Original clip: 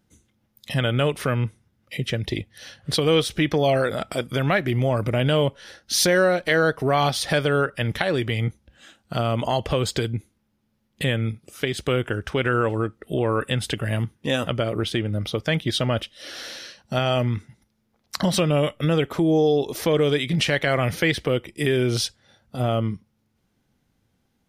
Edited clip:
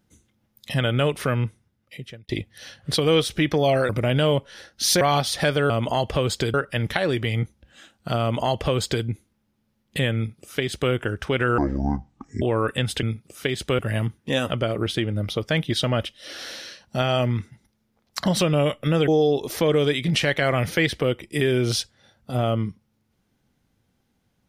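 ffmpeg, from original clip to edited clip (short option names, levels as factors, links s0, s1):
-filter_complex "[0:a]asplit=11[s0][s1][s2][s3][s4][s5][s6][s7][s8][s9][s10];[s0]atrim=end=2.29,asetpts=PTS-STARTPTS,afade=t=out:st=1.4:d=0.89[s11];[s1]atrim=start=2.29:end=3.892,asetpts=PTS-STARTPTS,afade=t=in:d=0.004:c=hsin[s12];[s2]atrim=start=4.988:end=6.112[s13];[s3]atrim=start=6.898:end=7.592[s14];[s4]atrim=start=9.258:end=10.102[s15];[s5]atrim=start=7.588:end=12.634[s16];[s6]atrim=start=12.63:end=13.15,asetpts=PTS-STARTPTS,asetrate=27342,aresample=44100,atrim=end_sample=36987,asetpts=PTS-STARTPTS[s17];[s7]atrim=start=13.146:end=13.762[s18];[s8]atrim=start=11.208:end=11.972[s19];[s9]atrim=start=13.758:end=19.052[s20];[s10]atrim=start=19.328[s21];[s11][s12]concat=n=2:v=0:a=1[s22];[s22][s13]acrossfade=d=0.004:c1=hsin:c2=hsin[s23];[s23][s14]acrossfade=d=0.004:c1=hsin:c2=hsin[s24];[s24][s15]acrossfade=d=0.004:c1=hsin:c2=hsin[s25];[s25][s16]acrossfade=d=0.004:c1=hsin:c2=hsin[s26];[s26][s17]acrossfade=d=0.004:c1=hsin:c2=hsin[s27];[s27][s18]acrossfade=d=0.004:c1=hsin:c2=hsin[s28];[s28][s19]acrossfade=d=0.004:c1=hsin:c2=hsin[s29];[s29][s20]acrossfade=d=0.004:c1=hsin:c2=hsin[s30];[s30][s21]acrossfade=d=0.004:c1=hsin:c2=hsin"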